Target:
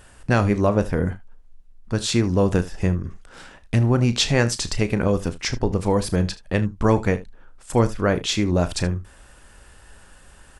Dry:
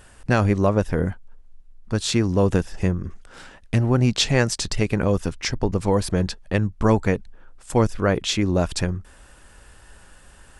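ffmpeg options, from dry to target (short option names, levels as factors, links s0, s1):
-af "aecho=1:1:34|76:0.224|0.126"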